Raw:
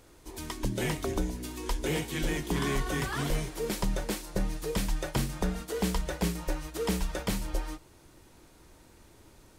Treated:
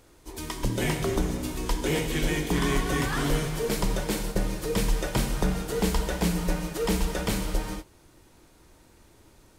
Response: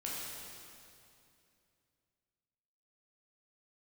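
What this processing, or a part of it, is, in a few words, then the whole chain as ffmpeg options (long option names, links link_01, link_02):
keyed gated reverb: -filter_complex "[0:a]asplit=3[link_01][link_02][link_03];[1:a]atrim=start_sample=2205[link_04];[link_02][link_04]afir=irnorm=-1:irlink=0[link_05];[link_03]apad=whole_len=422738[link_06];[link_05][link_06]sidechaingate=range=-33dB:threshold=-43dB:ratio=16:detection=peak,volume=-2.5dB[link_07];[link_01][link_07]amix=inputs=2:normalize=0"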